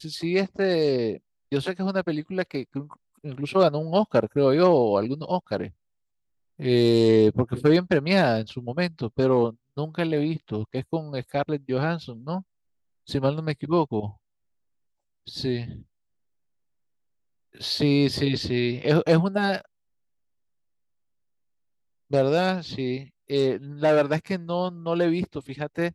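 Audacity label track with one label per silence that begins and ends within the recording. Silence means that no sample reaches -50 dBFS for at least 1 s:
14.170000	15.270000	silence
15.820000	17.550000	silence
19.660000	22.100000	silence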